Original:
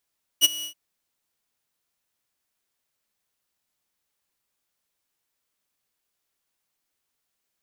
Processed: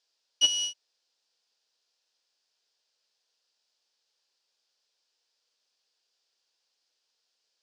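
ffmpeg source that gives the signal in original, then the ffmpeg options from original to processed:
-f lavfi -i "aevalsrc='0.376*(2*mod(2920*t,1)-1)':d=0.326:s=44100,afade=t=in:d=0.037,afade=t=out:st=0.037:d=0.021:silence=0.106,afade=t=out:st=0.23:d=0.096"
-af "aemphasis=mode=production:type=75kf,asoftclip=type=hard:threshold=-6dB,highpass=440,equalizer=f=480:t=q:w=4:g=6,equalizer=f=1.2k:t=q:w=4:g=-5,equalizer=f=2.1k:t=q:w=4:g=-7,equalizer=f=4.9k:t=q:w=4:g=6,lowpass=f=5.3k:w=0.5412,lowpass=f=5.3k:w=1.3066"

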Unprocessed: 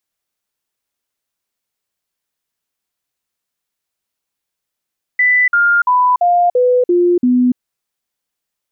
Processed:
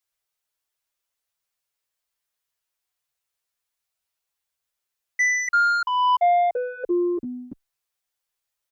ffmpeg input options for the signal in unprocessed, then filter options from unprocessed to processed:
-f lavfi -i "aevalsrc='0.376*clip(min(mod(t,0.34),0.29-mod(t,0.34))/0.005,0,1)*sin(2*PI*1990*pow(2,-floor(t/0.34)/2)*mod(t,0.34))':d=2.38:s=44100"
-filter_complex "[0:a]equalizer=f=230:t=o:w=1.1:g=-14.5,asoftclip=type=tanh:threshold=-12.5dB,asplit=2[a][b];[b]adelay=8.8,afreqshift=-0.74[c];[a][c]amix=inputs=2:normalize=1"

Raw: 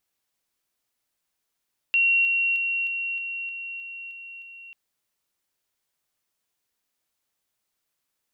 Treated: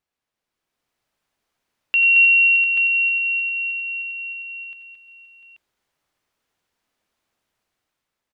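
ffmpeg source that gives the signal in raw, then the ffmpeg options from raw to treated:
-f lavfi -i "aevalsrc='pow(10,(-17-3*floor(t/0.31))/20)*sin(2*PI*2740*t)':d=2.79:s=44100"
-filter_complex "[0:a]lowpass=f=2.2k:p=1,dynaudnorm=f=120:g=11:m=8dB,asplit=2[a][b];[b]aecho=0:1:84|93|223|351|698|834:0.2|0.282|0.398|0.141|0.251|0.422[c];[a][c]amix=inputs=2:normalize=0"

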